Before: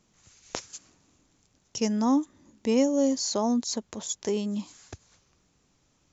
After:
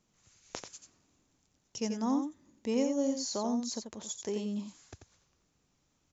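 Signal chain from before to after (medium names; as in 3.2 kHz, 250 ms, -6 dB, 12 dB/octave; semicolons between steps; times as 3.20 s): delay 88 ms -7 dB; trim -7.5 dB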